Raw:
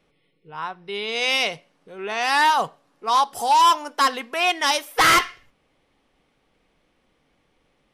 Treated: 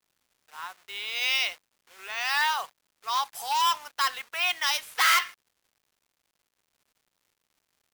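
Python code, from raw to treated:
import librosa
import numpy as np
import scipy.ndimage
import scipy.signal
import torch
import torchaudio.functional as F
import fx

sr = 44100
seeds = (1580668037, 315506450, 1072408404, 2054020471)

y = fx.delta_hold(x, sr, step_db=-39.0)
y = scipy.signal.sosfilt(scipy.signal.butter(2, 1300.0, 'highpass', fs=sr, output='sos'), y)
y = np.repeat(y[::2], 2)[:len(y)]
y = fx.dmg_crackle(y, sr, seeds[0], per_s=240.0, level_db=-53.0)
y = y * 10.0 ** (-3.5 / 20.0)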